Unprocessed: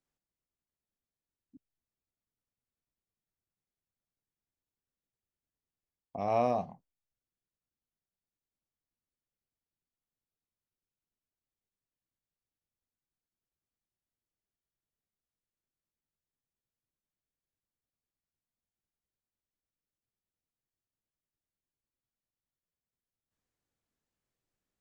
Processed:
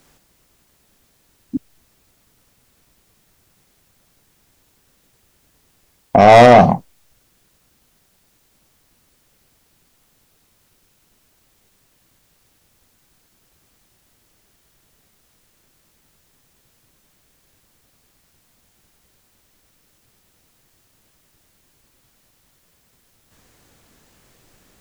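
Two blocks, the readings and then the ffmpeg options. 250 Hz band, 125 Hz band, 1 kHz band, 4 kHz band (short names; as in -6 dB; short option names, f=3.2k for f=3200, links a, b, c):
+24.0 dB, +26.0 dB, +23.5 dB, +32.5 dB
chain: -af "asoftclip=type=tanh:threshold=-31.5dB,alimiter=level_in=35.5dB:limit=-1dB:release=50:level=0:latency=1,volume=-1dB"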